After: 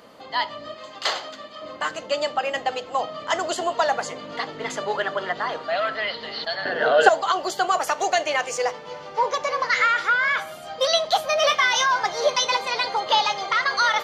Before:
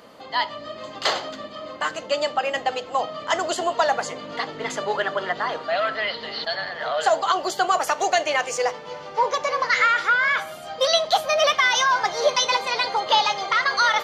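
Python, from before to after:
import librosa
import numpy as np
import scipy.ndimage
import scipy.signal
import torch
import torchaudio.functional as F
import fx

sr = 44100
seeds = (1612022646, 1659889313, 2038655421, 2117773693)

y = fx.low_shelf(x, sr, hz=460.0, db=-9.5, at=(0.74, 1.62))
y = fx.small_body(y, sr, hz=(290.0, 420.0, 1500.0, 2700.0), ring_ms=20, db=15, at=(6.65, 7.09))
y = fx.doubler(y, sr, ms=25.0, db=-7, at=(11.39, 11.86))
y = F.gain(torch.from_numpy(y), -1.0).numpy()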